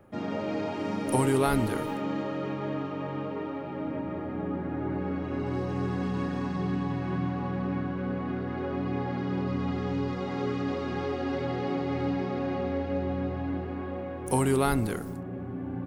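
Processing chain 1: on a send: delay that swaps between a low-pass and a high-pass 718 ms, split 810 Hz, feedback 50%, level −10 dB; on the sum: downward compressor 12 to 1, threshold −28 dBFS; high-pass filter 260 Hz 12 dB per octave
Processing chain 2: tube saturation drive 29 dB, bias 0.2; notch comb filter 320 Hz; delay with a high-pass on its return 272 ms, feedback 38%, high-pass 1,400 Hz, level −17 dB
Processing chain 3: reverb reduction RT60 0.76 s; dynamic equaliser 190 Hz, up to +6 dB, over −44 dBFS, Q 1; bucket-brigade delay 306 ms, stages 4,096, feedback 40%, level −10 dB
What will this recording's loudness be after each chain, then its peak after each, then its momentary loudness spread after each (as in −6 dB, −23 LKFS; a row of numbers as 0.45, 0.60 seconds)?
−36.0, −36.0, −29.5 LKFS; −20.0, −25.5, −9.0 dBFS; 3, 5, 8 LU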